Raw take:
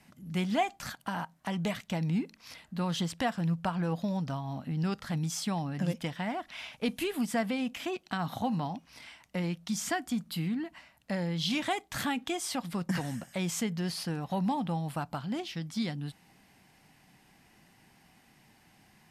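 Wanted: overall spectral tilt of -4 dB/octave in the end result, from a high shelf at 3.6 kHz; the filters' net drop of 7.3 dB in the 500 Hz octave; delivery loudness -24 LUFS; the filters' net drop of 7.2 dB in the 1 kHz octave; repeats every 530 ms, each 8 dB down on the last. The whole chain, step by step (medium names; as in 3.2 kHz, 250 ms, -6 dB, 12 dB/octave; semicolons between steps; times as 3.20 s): peaking EQ 500 Hz -8.5 dB; peaking EQ 1 kHz -6.5 dB; treble shelf 3.6 kHz +5.5 dB; feedback delay 530 ms, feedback 40%, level -8 dB; trim +10 dB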